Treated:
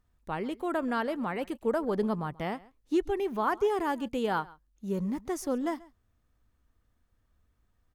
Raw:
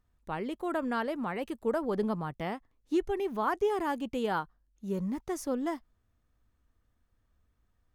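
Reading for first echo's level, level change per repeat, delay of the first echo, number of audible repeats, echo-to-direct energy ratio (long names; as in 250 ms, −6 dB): −22.0 dB, repeats not evenly spaced, 135 ms, 1, −22.0 dB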